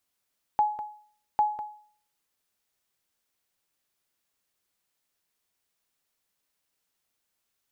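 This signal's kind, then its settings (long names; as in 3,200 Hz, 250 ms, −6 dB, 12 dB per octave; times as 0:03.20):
ping with an echo 843 Hz, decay 0.52 s, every 0.80 s, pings 2, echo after 0.20 s, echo −11 dB −16 dBFS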